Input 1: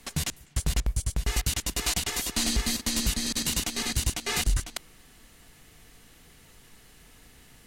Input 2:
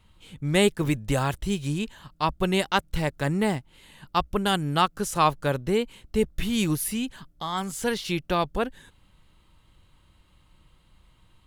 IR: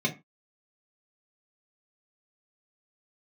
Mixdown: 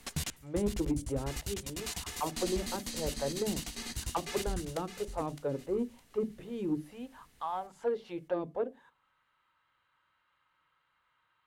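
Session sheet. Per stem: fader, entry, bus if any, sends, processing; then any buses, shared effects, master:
-2.5 dB, 0.00 s, no send, echo send -18.5 dB, auto duck -9 dB, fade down 0.60 s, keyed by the second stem
+1.0 dB, 0.00 s, send -20.5 dB, no echo send, auto-wah 260–1500 Hz, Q 2.8, down, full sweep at -18.5 dBFS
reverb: on, RT60 0.25 s, pre-delay 3 ms
echo: feedback delay 612 ms, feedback 29%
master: saturation -21.5 dBFS, distortion -21 dB

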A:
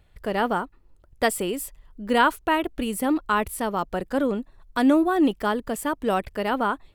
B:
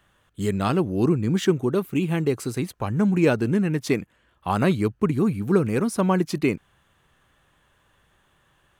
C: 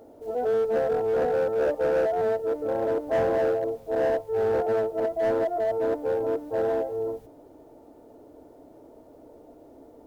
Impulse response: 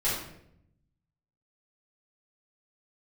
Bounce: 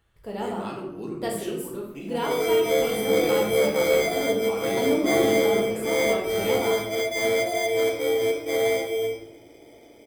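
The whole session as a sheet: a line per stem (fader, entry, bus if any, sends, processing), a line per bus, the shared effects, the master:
-12.5 dB, 0.00 s, send -4 dB, peaking EQ 1.6 kHz -9.5 dB 1.3 oct
-13.0 dB, 0.00 s, send -9 dB, high-pass 200 Hz 12 dB/octave; auto duck -8 dB, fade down 1.75 s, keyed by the first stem
-4.5 dB, 1.95 s, send -7 dB, band-stop 910 Hz, Q 12; sample-and-hold 16×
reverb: on, RT60 0.75 s, pre-delay 4 ms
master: high-pass 97 Hz 6 dB/octave

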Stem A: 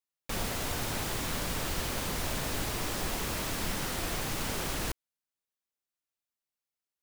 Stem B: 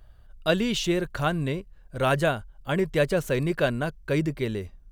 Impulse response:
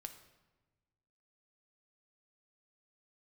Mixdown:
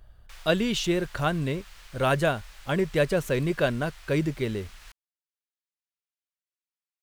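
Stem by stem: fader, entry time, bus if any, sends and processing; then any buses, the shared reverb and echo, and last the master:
-3.5 dB, 0.00 s, no send, high-pass 1.4 kHz 12 dB/octave; treble shelf 7.1 kHz -11.5 dB; auto duck -8 dB, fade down 0.50 s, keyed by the second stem
-0.5 dB, 0.00 s, no send, none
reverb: none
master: none

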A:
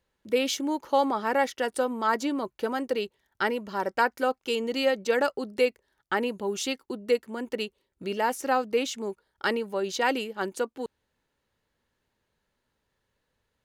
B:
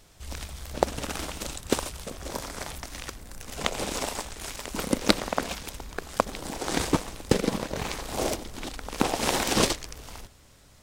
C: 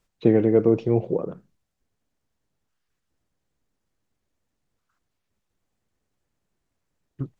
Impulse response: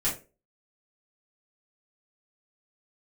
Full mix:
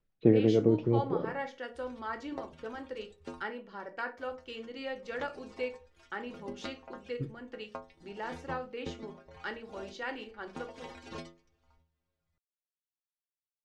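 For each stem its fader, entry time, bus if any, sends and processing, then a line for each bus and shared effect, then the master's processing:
-14.0 dB, 0.00 s, send -10.5 dB, expander -40 dBFS; tilt shelf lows -3 dB
-6.5 dB, 1.55 s, muted 3.43–4.18 s, no send, reverb removal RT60 1.9 s; inharmonic resonator 80 Hz, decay 0.45 s, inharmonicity 0.008
-5.0 dB, 0.00 s, send -21 dB, rotary cabinet horn 6 Hz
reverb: on, RT60 0.30 s, pre-delay 3 ms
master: low-pass 4.8 kHz 12 dB/octave; treble shelf 3.5 kHz -8 dB

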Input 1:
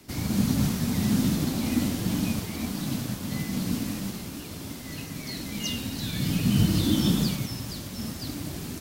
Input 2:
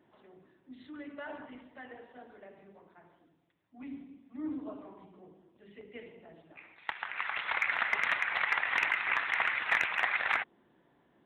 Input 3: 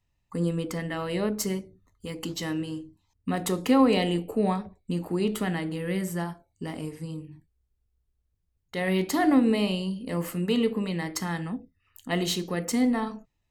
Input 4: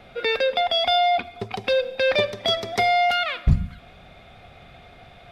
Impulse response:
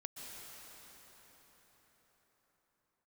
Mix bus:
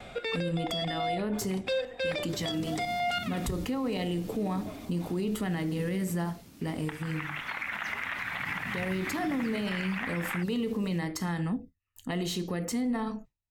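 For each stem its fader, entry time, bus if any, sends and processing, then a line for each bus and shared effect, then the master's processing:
-16.0 dB, 2.20 s, no bus, no send, none
-0.5 dB, 0.00 s, bus A, no send, none
0.0 dB, 0.00 s, bus A, no send, bass shelf 190 Hz +6 dB
+3.0 dB, 0.00 s, bus A, no send, peaking EQ 7.8 kHz +14.5 dB 0.45 oct; square tremolo 3 Hz, depth 65%, duty 55%; auto duck -7 dB, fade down 0.40 s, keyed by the third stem
bus A: 0.0 dB, gate with hold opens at -37 dBFS; peak limiter -17.5 dBFS, peak gain reduction 10.5 dB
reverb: none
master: peak limiter -23.5 dBFS, peak gain reduction 8 dB

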